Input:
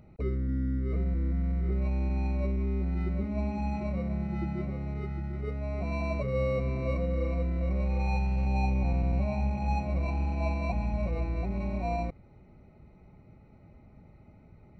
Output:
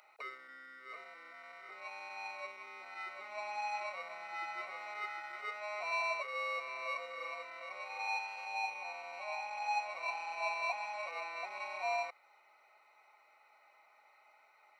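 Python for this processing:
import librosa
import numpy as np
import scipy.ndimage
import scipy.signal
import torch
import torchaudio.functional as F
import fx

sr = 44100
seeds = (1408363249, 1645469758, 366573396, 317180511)

y = fx.rider(x, sr, range_db=10, speed_s=0.5)
y = scipy.signal.sosfilt(scipy.signal.butter(4, 910.0, 'highpass', fs=sr, output='sos'), y)
y = F.gain(torch.from_numpy(y), 5.5).numpy()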